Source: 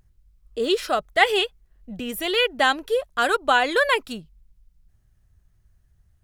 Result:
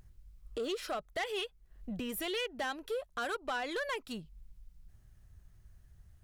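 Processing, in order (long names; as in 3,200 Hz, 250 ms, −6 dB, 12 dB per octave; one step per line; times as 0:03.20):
downward compressor 2.5 to 1, threshold −40 dBFS, peak gain reduction 18.5 dB
soft clipping −31.5 dBFS, distortion −13 dB
level +2 dB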